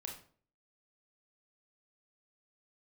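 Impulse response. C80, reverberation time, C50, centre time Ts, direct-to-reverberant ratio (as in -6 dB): 12.0 dB, 0.50 s, 6.5 dB, 26 ms, 0.0 dB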